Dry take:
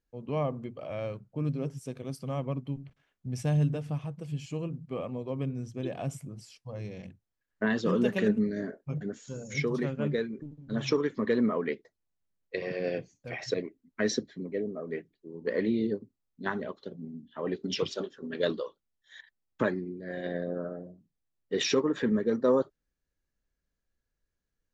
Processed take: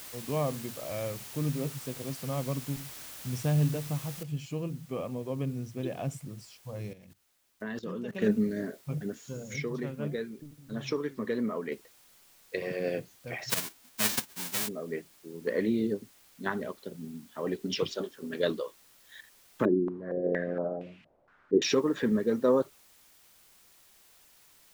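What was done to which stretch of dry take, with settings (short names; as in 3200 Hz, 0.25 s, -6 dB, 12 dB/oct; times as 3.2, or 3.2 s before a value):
4.23 noise floor step -45 dB -60 dB
6.93–8.22 level quantiser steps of 18 dB
9.56–11.72 flange 1.5 Hz, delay 4.4 ms, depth 4.2 ms, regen +88%
13.49–14.67 spectral whitening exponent 0.1
19.65–21.62 stepped low-pass 4.3 Hz 340–2600 Hz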